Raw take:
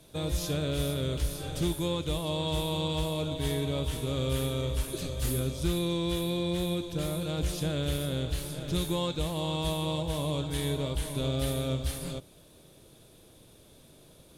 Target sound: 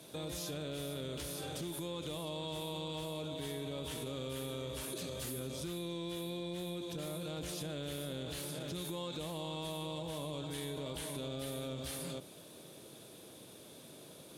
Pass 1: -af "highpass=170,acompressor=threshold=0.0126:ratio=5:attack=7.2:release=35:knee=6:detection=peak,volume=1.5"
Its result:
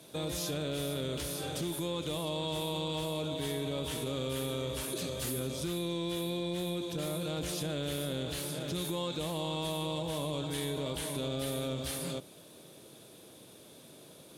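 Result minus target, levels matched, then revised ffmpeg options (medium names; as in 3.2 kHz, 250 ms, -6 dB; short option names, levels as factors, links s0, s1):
compression: peak gain reduction -6 dB
-af "highpass=170,acompressor=threshold=0.00531:ratio=5:attack=7.2:release=35:knee=6:detection=peak,volume=1.5"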